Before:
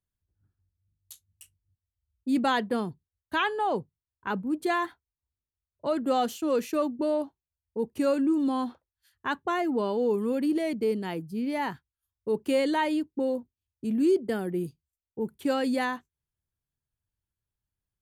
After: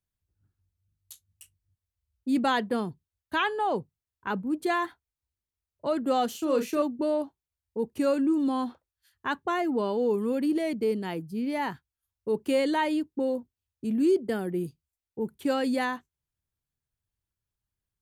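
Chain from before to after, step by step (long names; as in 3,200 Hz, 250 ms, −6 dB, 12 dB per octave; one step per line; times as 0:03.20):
0:06.31–0:06.82: double-tracking delay 37 ms −7 dB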